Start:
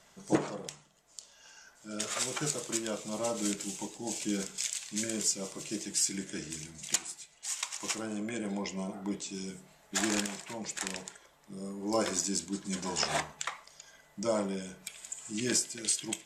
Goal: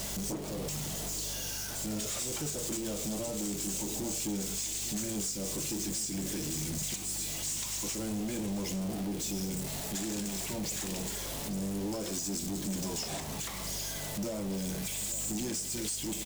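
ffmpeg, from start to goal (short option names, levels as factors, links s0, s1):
-filter_complex "[0:a]aeval=exprs='val(0)+0.5*0.0376*sgn(val(0))':c=same,aeval=exprs='val(0)+0.00631*(sin(2*PI*50*n/s)+sin(2*PI*2*50*n/s)/2+sin(2*PI*3*50*n/s)/3+sin(2*PI*4*50*n/s)/4+sin(2*PI*5*50*n/s)/5)':c=same,acompressor=threshold=0.0355:ratio=6,equalizer=f=1400:w=0.62:g=-13,asoftclip=type=hard:threshold=0.0266,asplit=2[s0][s1];[s1]aecho=0:1:849:0.2[s2];[s0][s2]amix=inputs=2:normalize=0"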